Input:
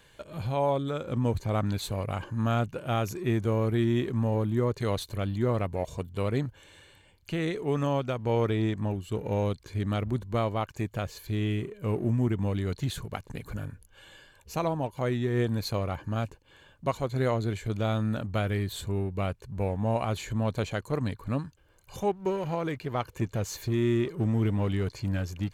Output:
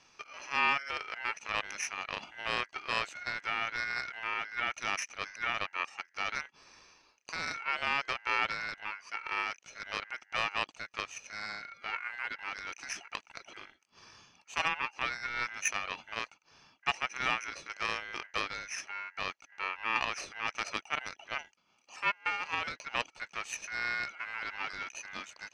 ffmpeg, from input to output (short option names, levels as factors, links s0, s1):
-af "highpass=440,equalizer=f=900:t=q:w=4:g=4,equalizer=f=1800:t=q:w=4:g=-8,equalizer=f=4400:t=q:w=4:g=10,lowpass=f=5000:w=0.5412,lowpass=f=5000:w=1.3066,aeval=exprs='0.224*(cos(1*acos(clip(val(0)/0.224,-1,1)))-cos(1*PI/2))+0.0282*(cos(6*acos(clip(val(0)/0.224,-1,1)))-cos(6*PI/2))':c=same,aeval=exprs='val(0)*sin(2*PI*1800*n/s)':c=same"